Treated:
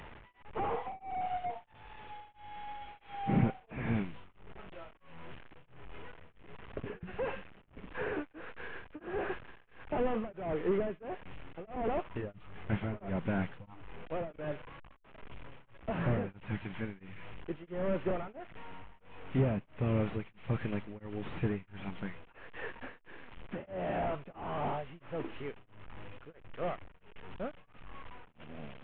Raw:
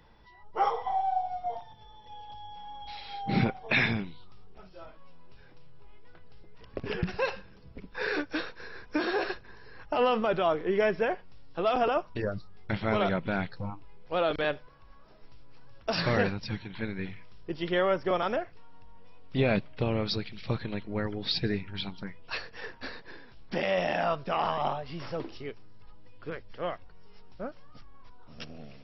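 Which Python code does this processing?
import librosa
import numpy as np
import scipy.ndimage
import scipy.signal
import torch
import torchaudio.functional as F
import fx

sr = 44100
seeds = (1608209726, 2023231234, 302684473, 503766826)

y = fx.delta_mod(x, sr, bps=16000, step_db=-42.5)
y = y * np.abs(np.cos(np.pi * 1.5 * np.arange(len(y)) / sr))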